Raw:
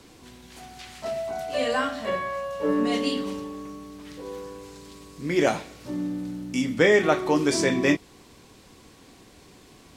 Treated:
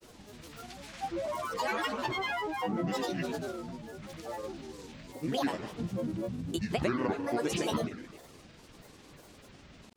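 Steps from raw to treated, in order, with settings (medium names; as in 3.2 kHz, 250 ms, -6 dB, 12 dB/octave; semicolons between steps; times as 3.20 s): compression 6:1, threshold -26 dBFS, peak gain reduction 11.5 dB; multi-head delay 73 ms, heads first and second, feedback 47%, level -17.5 dB; granulator, grains 20 per s, pitch spread up and down by 12 st; trim -1.5 dB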